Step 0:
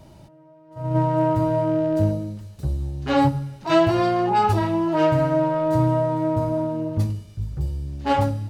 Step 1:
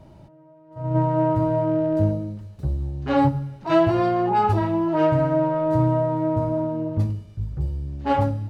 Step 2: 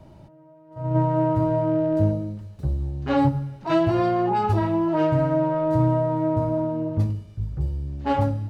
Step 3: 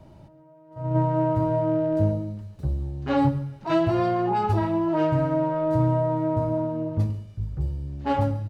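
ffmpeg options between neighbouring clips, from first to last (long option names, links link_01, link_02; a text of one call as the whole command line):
ffmpeg -i in.wav -af "highshelf=frequency=3200:gain=-12" out.wav
ffmpeg -i in.wav -filter_complex "[0:a]acrossover=split=390|3000[link_01][link_02][link_03];[link_02]acompressor=threshold=-21dB:ratio=6[link_04];[link_01][link_04][link_03]amix=inputs=3:normalize=0" out.wav
ffmpeg -i in.wav -af "aecho=1:1:135:0.133,volume=-1.5dB" out.wav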